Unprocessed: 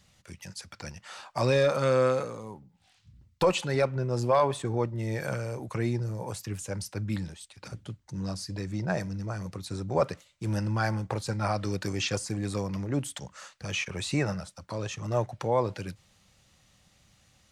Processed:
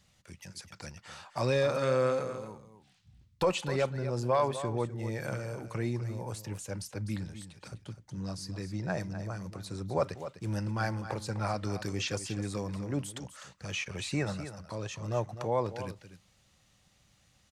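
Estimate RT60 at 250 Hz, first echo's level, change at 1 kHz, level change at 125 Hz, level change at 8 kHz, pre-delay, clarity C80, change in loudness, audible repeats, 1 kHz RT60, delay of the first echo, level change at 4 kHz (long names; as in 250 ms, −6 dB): no reverb audible, −11.5 dB, −3.5 dB, −4.0 dB, −3.5 dB, no reverb audible, no reverb audible, −4.0 dB, 1, no reverb audible, 252 ms, −3.5 dB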